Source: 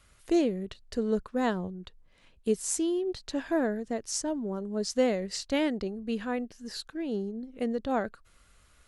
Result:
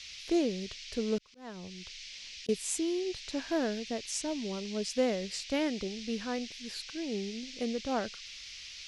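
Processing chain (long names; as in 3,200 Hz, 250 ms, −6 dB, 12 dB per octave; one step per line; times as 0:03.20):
noise in a band 2,100–5,900 Hz −43 dBFS
0:01.18–0:02.49: volume swells 624 ms
level −3.5 dB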